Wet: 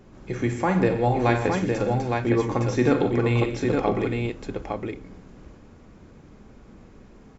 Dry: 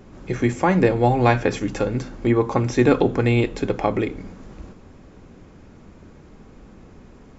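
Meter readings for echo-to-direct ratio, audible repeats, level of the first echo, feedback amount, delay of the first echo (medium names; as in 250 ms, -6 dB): -2.0 dB, 5, -10.5 dB, no regular repeats, 43 ms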